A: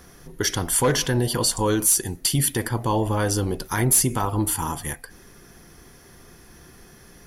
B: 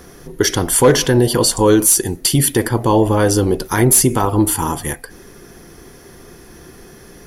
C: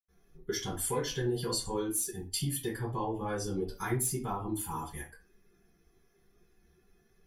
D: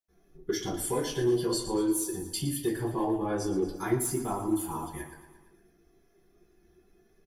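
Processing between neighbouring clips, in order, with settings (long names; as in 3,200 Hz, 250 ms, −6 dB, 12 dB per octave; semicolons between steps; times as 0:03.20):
parametric band 390 Hz +6 dB 1.3 octaves; level +6 dB
spectral dynamics exaggerated over time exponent 1.5; downward compressor 4 to 1, threshold −18 dBFS, peak gain reduction 9.5 dB; convolution reverb RT60 0.30 s, pre-delay 84 ms; level −5 dB
hollow resonant body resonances 330/630 Hz, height 10 dB, ringing for 30 ms; in parallel at −9 dB: hard clipping −23 dBFS, distortion −15 dB; on the sum: repeating echo 115 ms, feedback 58%, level −12 dB; level −3 dB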